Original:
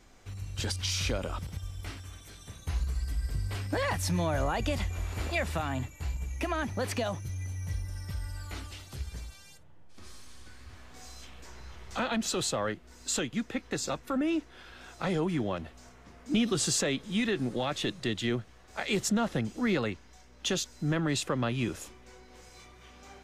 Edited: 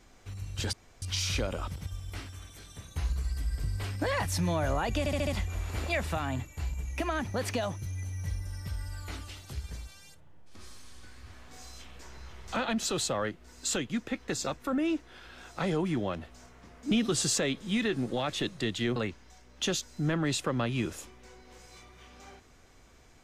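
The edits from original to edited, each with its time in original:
0.73 insert room tone 0.29 s
4.7 stutter 0.07 s, 5 plays
18.39–19.79 cut

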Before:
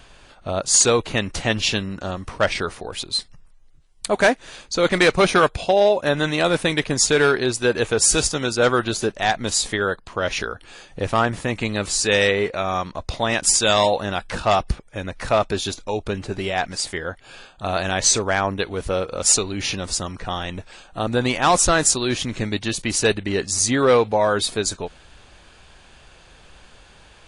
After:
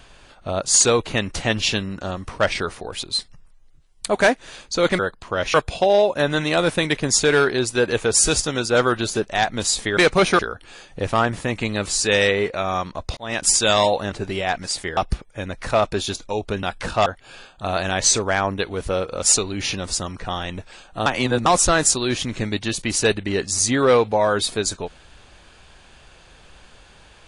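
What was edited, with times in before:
4.99–5.41 swap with 9.84–10.39
13.17–13.43 fade in
14.12–14.55 swap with 16.21–17.06
21.06–21.46 reverse

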